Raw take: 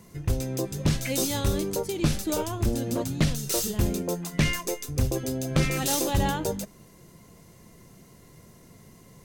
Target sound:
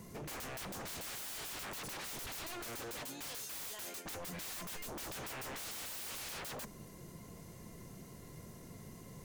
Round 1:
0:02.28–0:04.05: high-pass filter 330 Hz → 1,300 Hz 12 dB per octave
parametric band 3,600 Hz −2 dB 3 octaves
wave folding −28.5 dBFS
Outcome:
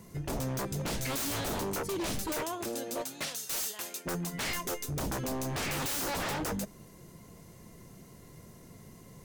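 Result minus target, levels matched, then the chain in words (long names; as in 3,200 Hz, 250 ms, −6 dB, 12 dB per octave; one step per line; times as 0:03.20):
wave folding: distortion −22 dB
0:02.28–0:04.05: high-pass filter 330 Hz → 1,300 Hz 12 dB per octave
parametric band 3,600 Hz −2 dB 3 octaves
wave folding −39.5 dBFS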